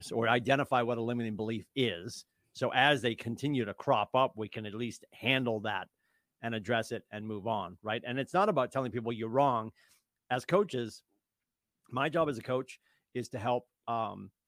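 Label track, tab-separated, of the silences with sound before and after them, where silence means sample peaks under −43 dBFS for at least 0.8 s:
10.970000	11.930000	silence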